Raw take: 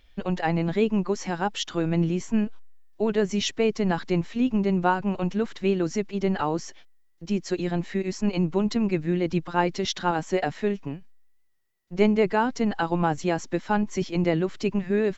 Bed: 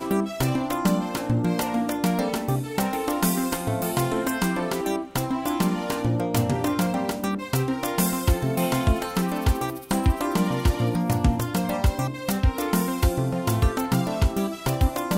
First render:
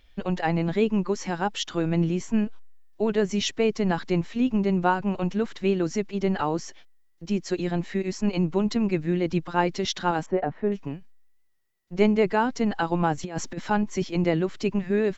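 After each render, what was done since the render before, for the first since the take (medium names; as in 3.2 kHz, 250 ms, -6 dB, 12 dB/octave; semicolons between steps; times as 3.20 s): 0.87–1.28 s: band-stop 700 Hz, Q 5.7; 10.26–10.72 s: low-pass 1.2 kHz; 13.23–13.71 s: compressor with a negative ratio -29 dBFS, ratio -0.5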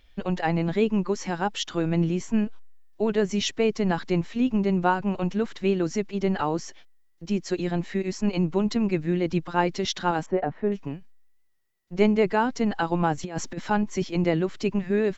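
no audible change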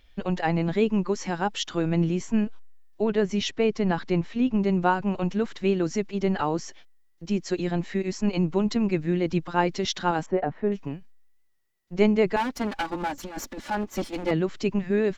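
3.03–4.60 s: distance through air 69 m; 12.36–14.31 s: comb filter that takes the minimum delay 3.5 ms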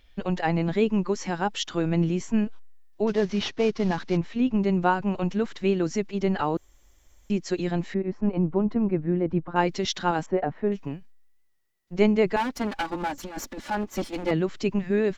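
3.07–4.17 s: CVSD coder 32 kbps; 6.57–7.30 s: room tone; 7.94–9.56 s: low-pass 1.2 kHz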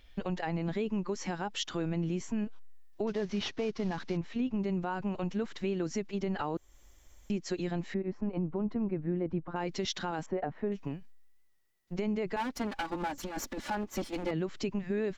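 peak limiter -16.5 dBFS, peak gain reduction 10 dB; compression 2:1, threshold -35 dBFS, peak gain reduction 8.5 dB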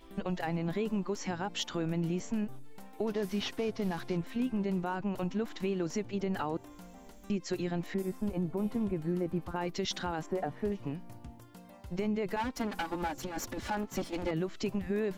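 add bed -27.5 dB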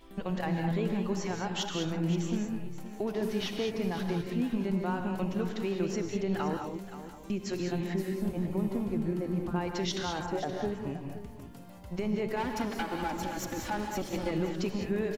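delay 524 ms -13 dB; gated-style reverb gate 230 ms rising, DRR 3.5 dB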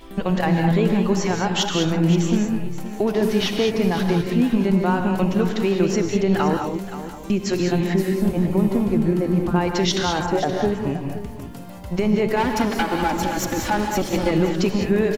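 trim +12 dB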